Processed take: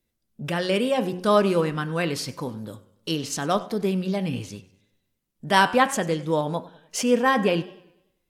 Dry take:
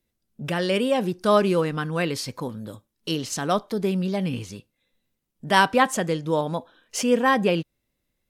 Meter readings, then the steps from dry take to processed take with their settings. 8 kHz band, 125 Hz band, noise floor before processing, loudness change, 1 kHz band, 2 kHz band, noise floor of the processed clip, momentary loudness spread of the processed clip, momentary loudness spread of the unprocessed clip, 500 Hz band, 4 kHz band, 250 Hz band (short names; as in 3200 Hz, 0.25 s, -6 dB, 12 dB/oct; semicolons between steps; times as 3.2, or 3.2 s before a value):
0.0 dB, -0.5 dB, -78 dBFS, 0.0 dB, 0.0 dB, -0.5 dB, -76 dBFS, 18 LU, 15 LU, 0.0 dB, 0.0 dB, -0.5 dB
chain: de-hum 89.96 Hz, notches 35; warbling echo 98 ms, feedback 46%, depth 113 cents, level -20 dB